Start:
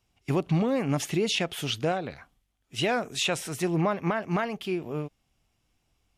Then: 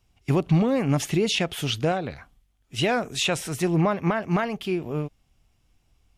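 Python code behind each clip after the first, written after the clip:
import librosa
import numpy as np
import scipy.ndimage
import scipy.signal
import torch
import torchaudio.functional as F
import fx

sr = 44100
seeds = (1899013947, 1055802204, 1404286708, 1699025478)

y = fx.low_shelf(x, sr, hz=100.0, db=9.5)
y = y * librosa.db_to_amplitude(2.5)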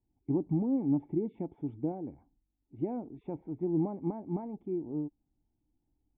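y = fx.formant_cascade(x, sr, vowel='u')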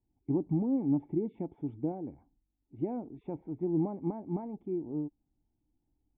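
y = x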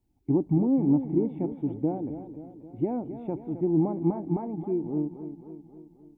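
y = fx.echo_warbled(x, sr, ms=266, feedback_pct=57, rate_hz=2.8, cents=76, wet_db=-11.0)
y = y * librosa.db_to_amplitude(6.0)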